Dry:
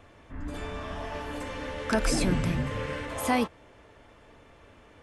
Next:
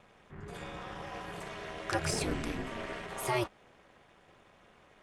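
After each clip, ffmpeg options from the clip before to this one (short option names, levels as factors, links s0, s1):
-af "aeval=exprs='if(lt(val(0),0),0.708*val(0),val(0))':c=same,aeval=exprs='val(0)*sin(2*PI*120*n/s)':c=same,lowshelf=f=340:g=-7"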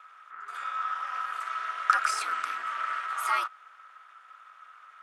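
-af "highpass=f=1300:t=q:w=15"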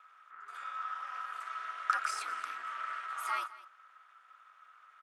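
-af "aecho=1:1:209:0.119,volume=0.422"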